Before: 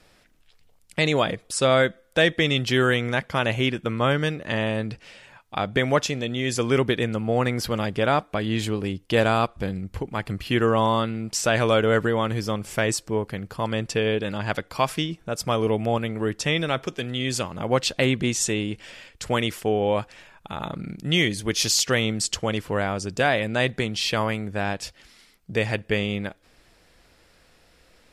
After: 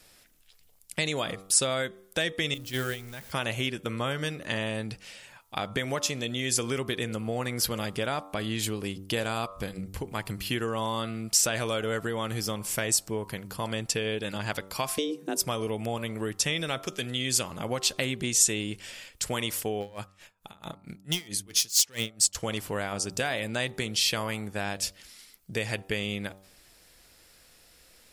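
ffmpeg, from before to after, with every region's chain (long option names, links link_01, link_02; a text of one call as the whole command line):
ffmpeg -i in.wav -filter_complex "[0:a]asettb=1/sr,asplit=3[link_01][link_02][link_03];[link_01]atrim=end=2.544[link_04];[link_02]atrim=start=2.54:end=3.32,asetpts=PTS-STARTPTS,afade=type=in:duration=0.004:curve=qsin,afade=type=out:start_time=0.776:duration=0.004:curve=qsin,aeval=exprs='val(0)+0.5*0.0422*sgn(val(0))':channel_layout=same,lowshelf=frequency=120:gain=10.5,agate=range=-18dB:threshold=-16dB:ratio=16:release=100:detection=peak[link_05];[link_03]atrim=start=3.316[link_06];[link_04][link_05]acrossfade=duration=0.004:curve1=hsin:curve2=qsin[link_07];[link_07][link_06]acrossfade=duration=0.004:curve1=qsin:curve2=hsin,asettb=1/sr,asplit=3[link_08][link_09][link_10];[link_08]atrim=end=14.984[link_11];[link_09]atrim=start=14.98:end=15.42,asetpts=PTS-STARTPTS,afade=type=in:duration=0.004:curve=qsin,afade=type=out:start_time=0.436:duration=0.004:curve=qsin,lowshelf=frequency=380:width_type=q:width=1.5:gain=7.5,afreqshift=140[link_12];[link_10]atrim=start=15.416[link_13];[link_11][link_12]acrossfade=duration=0.004:curve1=hsin:curve2=qsin[link_14];[link_14][link_13]acrossfade=duration=0.004:curve1=qsin:curve2=hsin,asettb=1/sr,asplit=3[link_15][link_16][link_17];[link_15]atrim=end=19.804[link_18];[link_16]atrim=start=19.8:end=22.35,asetpts=PTS-STARTPTS,afade=type=in:duration=0.004:curve=qsin,afade=type=out:start_time=2.546:duration=0.004:curve=qsin,asoftclip=type=hard:threshold=-16dB,aeval=exprs='val(0)*pow(10,-26*(0.5-0.5*cos(2*PI*4.5*n/s))/20)':channel_layout=same[link_19];[link_17]atrim=start=22.346[link_20];[link_18][link_19]acrossfade=duration=0.004:curve1=hsin:curve2=qsin[link_21];[link_21][link_20]acrossfade=duration=0.004:curve1=qsin:curve2=hsin,bandreject=frequency=96.27:width_type=h:width=4,bandreject=frequency=192.54:width_type=h:width=4,bandreject=frequency=288.81:width_type=h:width=4,bandreject=frequency=385.08:width_type=h:width=4,bandreject=frequency=481.35:width_type=h:width=4,bandreject=frequency=577.62:width_type=h:width=4,bandreject=frequency=673.89:width_type=h:width=4,bandreject=frequency=770.16:width_type=h:width=4,bandreject=frequency=866.43:width_type=h:width=4,bandreject=frequency=962.7:width_type=h:width=4,bandreject=frequency=1058.97:width_type=h:width=4,bandreject=frequency=1155.24:width_type=h:width=4,bandreject=frequency=1251.51:width_type=h:width=4,bandreject=frequency=1347.78:width_type=h:width=4,acompressor=threshold=-23dB:ratio=4,aemphasis=mode=production:type=75kf,volume=-4.5dB" out.wav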